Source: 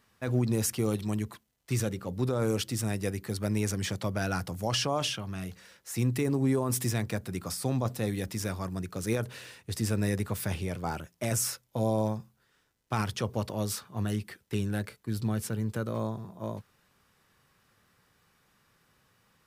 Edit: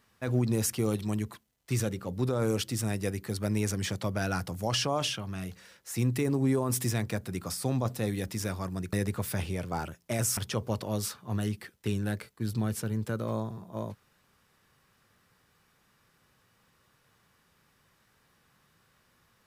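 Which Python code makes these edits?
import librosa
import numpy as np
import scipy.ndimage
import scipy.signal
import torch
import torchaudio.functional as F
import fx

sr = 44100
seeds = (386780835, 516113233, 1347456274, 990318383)

y = fx.edit(x, sr, fx.cut(start_s=8.93, length_s=1.12),
    fx.cut(start_s=11.49, length_s=1.55), tone=tone)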